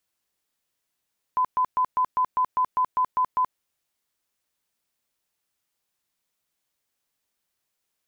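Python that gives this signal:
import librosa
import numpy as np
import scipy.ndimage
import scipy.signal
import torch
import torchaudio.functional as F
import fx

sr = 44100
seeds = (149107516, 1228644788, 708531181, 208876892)

y = fx.tone_burst(sr, hz=1010.0, cycles=78, every_s=0.2, bursts=11, level_db=-18.5)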